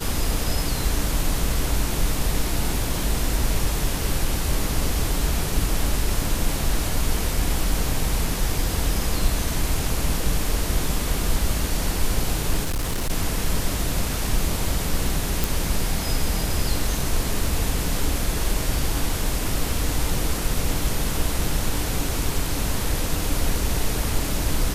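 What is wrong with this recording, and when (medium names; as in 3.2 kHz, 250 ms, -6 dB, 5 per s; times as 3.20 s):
12.63–13.11 s: clipped -20.5 dBFS
15.44 s: pop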